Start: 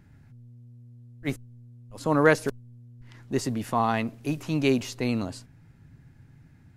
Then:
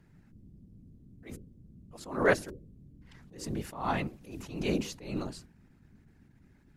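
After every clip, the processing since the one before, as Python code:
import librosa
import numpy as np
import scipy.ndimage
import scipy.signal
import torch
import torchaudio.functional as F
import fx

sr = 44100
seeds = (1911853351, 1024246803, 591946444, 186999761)

y = fx.hum_notches(x, sr, base_hz=50, count=8)
y = fx.whisperise(y, sr, seeds[0])
y = fx.attack_slew(y, sr, db_per_s=110.0)
y = y * 10.0 ** (-4.5 / 20.0)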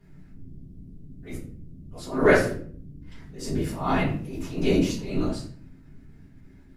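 y = fx.room_shoebox(x, sr, seeds[1], volume_m3=47.0, walls='mixed', distance_m=1.7)
y = y * 10.0 ** (-2.5 / 20.0)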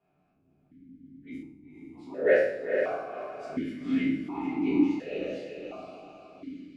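y = fx.spec_trails(x, sr, decay_s=0.64)
y = fx.echo_diffused(y, sr, ms=485, feedback_pct=47, wet_db=-4.0)
y = fx.vowel_held(y, sr, hz=1.4)
y = y * 10.0 ** (2.5 / 20.0)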